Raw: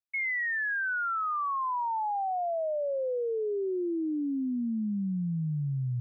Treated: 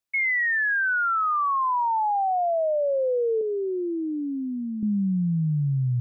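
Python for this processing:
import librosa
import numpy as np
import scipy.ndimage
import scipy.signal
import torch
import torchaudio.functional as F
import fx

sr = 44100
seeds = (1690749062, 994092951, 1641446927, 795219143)

y = fx.highpass(x, sr, hz=430.0, slope=6, at=(3.41, 4.83))
y = y * 10.0 ** (7.0 / 20.0)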